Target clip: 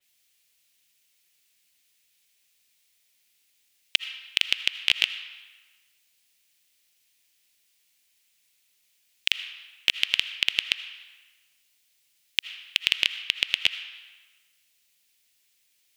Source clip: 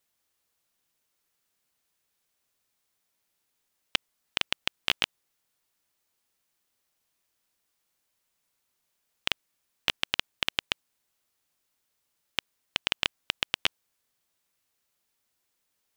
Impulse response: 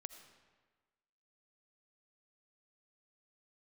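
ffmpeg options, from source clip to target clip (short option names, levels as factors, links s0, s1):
-filter_complex "[0:a]alimiter=limit=0.316:level=0:latency=1:release=32,asplit=2[s0][s1];[s1]highpass=f=2300:t=q:w=1.7[s2];[1:a]atrim=start_sample=2205,lowshelf=f=270:g=11.5[s3];[s2][s3]afir=irnorm=-1:irlink=0,volume=4.22[s4];[s0][s4]amix=inputs=2:normalize=0,adynamicequalizer=threshold=0.0141:dfrequency=4000:dqfactor=0.7:tfrequency=4000:tqfactor=0.7:attack=5:release=100:ratio=0.375:range=2:mode=cutabove:tftype=highshelf,volume=0.891"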